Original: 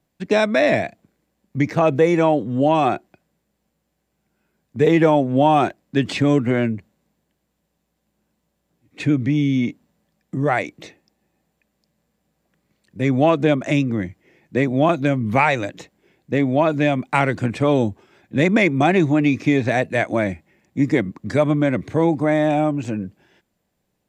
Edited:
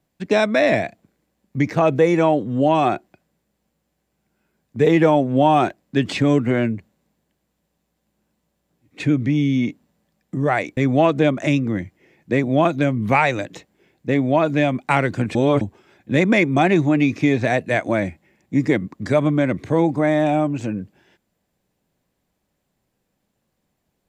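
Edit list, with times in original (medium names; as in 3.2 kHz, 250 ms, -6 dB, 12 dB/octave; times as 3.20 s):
10.77–13.01 s: delete
17.59–17.85 s: reverse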